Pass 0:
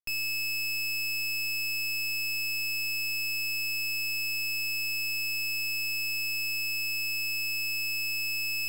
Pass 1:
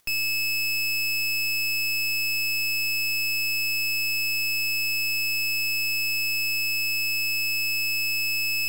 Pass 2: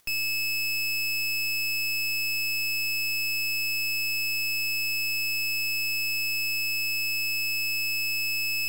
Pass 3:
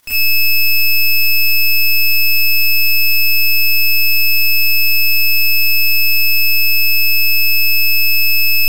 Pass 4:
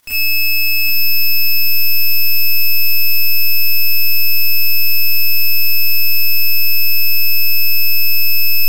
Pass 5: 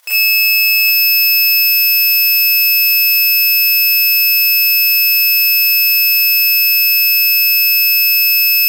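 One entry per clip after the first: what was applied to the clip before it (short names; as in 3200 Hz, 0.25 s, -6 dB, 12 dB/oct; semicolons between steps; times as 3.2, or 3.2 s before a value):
upward compressor, threshold -52 dBFS; gain +5.5 dB
wavefolder -27 dBFS; gain +1.5 dB
Schroeder reverb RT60 0.32 s, combs from 26 ms, DRR -8 dB; gain +4 dB
lo-fi delay 0.776 s, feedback 35%, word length 7-bit, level -5 dB; gain -2 dB
brick-wall FIR high-pass 470 Hz; gain +5.5 dB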